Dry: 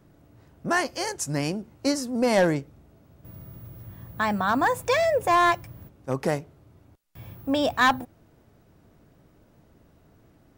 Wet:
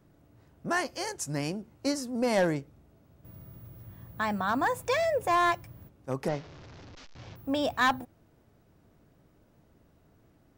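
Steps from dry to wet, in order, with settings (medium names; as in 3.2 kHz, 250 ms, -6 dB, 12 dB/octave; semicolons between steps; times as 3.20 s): 6.28–7.36 s: one-bit delta coder 32 kbps, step -37.5 dBFS; trim -5 dB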